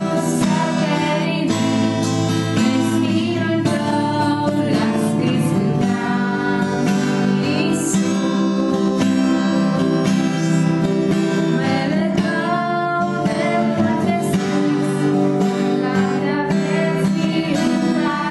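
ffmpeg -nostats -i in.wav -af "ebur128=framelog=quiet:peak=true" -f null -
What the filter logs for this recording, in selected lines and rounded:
Integrated loudness:
  I:         -18.1 LUFS
  Threshold: -28.1 LUFS
Loudness range:
  LRA:         0.9 LU
  Threshold: -38.0 LUFS
  LRA low:   -18.3 LUFS
  LRA high:  -17.5 LUFS
True peak:
  Peak:       -5.8 dBFS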